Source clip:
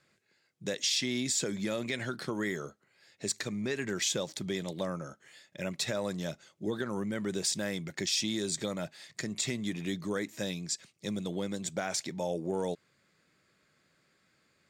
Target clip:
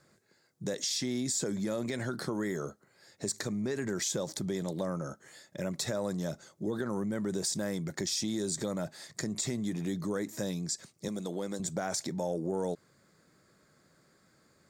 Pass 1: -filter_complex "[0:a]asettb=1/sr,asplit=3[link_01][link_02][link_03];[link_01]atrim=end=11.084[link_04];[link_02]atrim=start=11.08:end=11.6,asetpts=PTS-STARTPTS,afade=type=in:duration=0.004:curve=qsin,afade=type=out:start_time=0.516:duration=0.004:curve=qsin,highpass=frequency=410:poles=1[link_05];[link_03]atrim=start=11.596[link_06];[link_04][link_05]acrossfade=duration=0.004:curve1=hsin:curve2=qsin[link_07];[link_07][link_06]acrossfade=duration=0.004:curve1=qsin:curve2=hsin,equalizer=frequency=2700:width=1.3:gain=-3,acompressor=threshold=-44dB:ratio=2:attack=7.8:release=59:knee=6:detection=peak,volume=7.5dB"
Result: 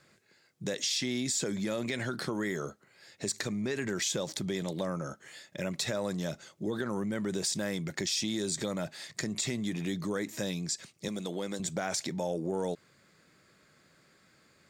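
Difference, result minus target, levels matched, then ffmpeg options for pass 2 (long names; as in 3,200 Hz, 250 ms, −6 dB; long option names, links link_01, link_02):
2,000 Hz band +4.0 dB
-filter_complex "[0:a]asettb=1/sr,asplit=3[link_01][link_02][link_03];[link_01]atrim=end=11.084[link_04];[link_02]atrim=start=11.08:end=11.6,asetpts=PTS-STARTPTS,afade=type=in:duration=0.004:curve=qsin,afade=type=out:start_time=0.516:duration=0.004:curve=qsin,highpass=frequency=410:poles=1[link_05];[link_03]atrim=start=11.596[link_06];[link_04][link_05]acrossfade=duration=0.004:curve1=hsin:curve2=qsin[link_07];[link_07][link_06]acrossfade=duration=0.004:curve1=qsin:curve2=hsin,equalizer=frequency=2700:width=1.3:gain=-13.5,acompressor=threshold=-44dB:ratio=2:attack=7.8:release=59:knee=6:detection=peak,volume=7.5dB"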